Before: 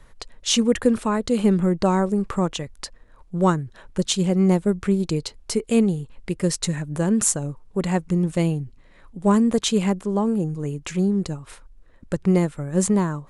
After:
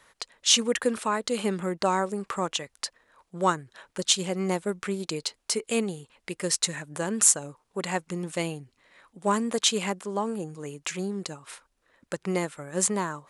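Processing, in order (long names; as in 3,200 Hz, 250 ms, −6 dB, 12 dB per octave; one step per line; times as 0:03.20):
high-pass filter 1,000 Hz 6 dB per octave
level +2 dB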